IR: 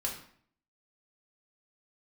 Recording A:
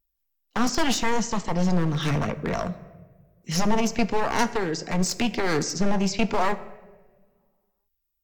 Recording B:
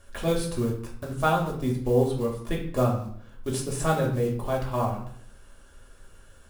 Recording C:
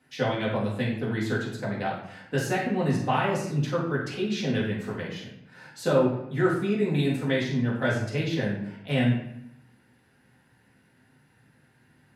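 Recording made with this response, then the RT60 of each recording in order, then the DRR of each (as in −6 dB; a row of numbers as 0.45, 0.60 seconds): B; 1.4, 0.55, 0.80 seconds; 8.5, −2.0, −6.5 decibels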